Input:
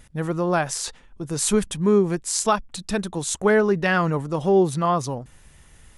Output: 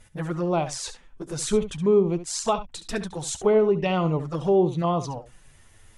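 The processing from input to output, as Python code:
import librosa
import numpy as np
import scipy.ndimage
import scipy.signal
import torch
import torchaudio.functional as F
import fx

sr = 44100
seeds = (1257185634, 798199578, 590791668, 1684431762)

y = fx.env_flanger(x, sr, rest_ms=10.6, full_db=-18.0)
y = fx.peak_eq(y, sr, hz=210.0, db=-3.0, octaves=0.97)
y = fx.env_lowpass_down(y, sr, base_hz=2700.0, full_db=-17.5)
y = fx.room_early_taps(y, sr, ms=(12, 70), db=(-13.5, -12.5))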